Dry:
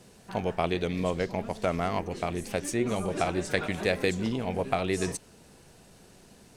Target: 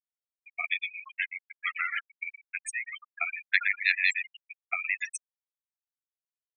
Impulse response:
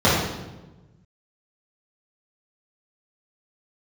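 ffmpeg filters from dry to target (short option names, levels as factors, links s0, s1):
-filter_complex "[0:a]aecho=1:1:119|238|357|476:0.501|0.14|0.0393|0.011,asettb=1/sr,asplit=3[s0][s1][s2];[s0]atrim=end=1.154[s3];[s1]atrim=start=1.15:end=2.04,asetpts=PTS-STARTPTS,afade=t=in:d=0.004:c=qsin,afade=t=out:st=0.886:d=0.004:c=qsin,aeval=exprs='0.2*(cos(1*acos(clip(val(0)/0.2,-1,1)))-cos(1*PI/2))+0.0398*(cos(3*acos(clip(val(0)/0.2,-1,1)))-cos(3*PI/2))+0.00282*(cos(5*acos(clip(val(0)/0.2,-1,1)))-cos(5*PI/2))+0.0501*(cos(6*acos(clip(val(0)/0.2,-1,1)))-cos(6*PI/2))':c=same[s4];[s2]atrim=start=2.036[s5];[s3][s4]acrossfade=d=0.004:c1=hsin:c2=qsin[s6];[s6][s5]acrossfade=d=0.004:c1=qsin:c2=hsin,acontrast=51,highpass=f=2000:t=q:w=1.5,afftfilt=real='re*gte(hypot(re,im),0.112)':imag='im*gte(hypot(re,im),0.112)':win_size=1024:overlap=0.75"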